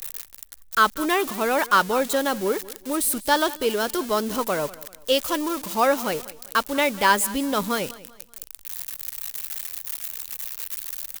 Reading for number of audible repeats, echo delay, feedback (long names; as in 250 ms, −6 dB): 2, 193 ms, 36%